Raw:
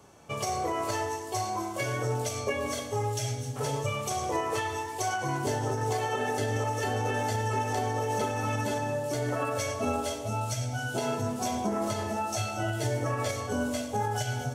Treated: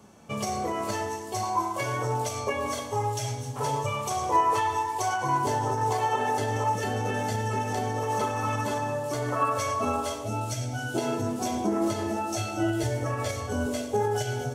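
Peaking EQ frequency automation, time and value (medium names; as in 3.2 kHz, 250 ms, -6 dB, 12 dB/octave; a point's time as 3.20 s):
peaking EQ +12.5 dB 0.37 oct
210 Hz
from 1.43 s 970 Hz
from 6.75 s 190 Hz
from 8.03 s 1.1 kHz
from 10.24 s 320 Hz
from 12.83 s 76 Hz
from 13.66 s 390 Hz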